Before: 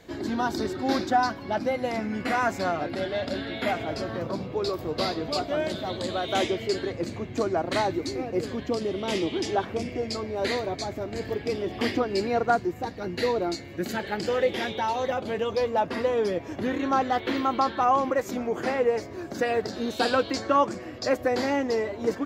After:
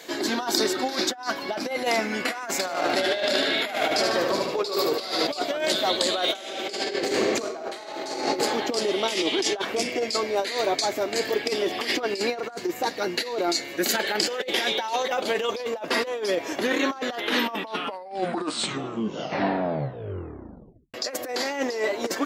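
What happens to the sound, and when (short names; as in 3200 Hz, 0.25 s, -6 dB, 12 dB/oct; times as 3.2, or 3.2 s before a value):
2.52–5.27 feedback echo 75 ms, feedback 53%, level -5 dB
6.23–8.16 reverb throw, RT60 2.6 s, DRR -2.5 dB
16.99 tape stop 3.95 s
whole clip: HPF 360 Hz 12 dB/oct; high shelf 2700 Hz +10 dB; negative-ratio compressor -29 dBFS, ratio -0.5; gain +4 dB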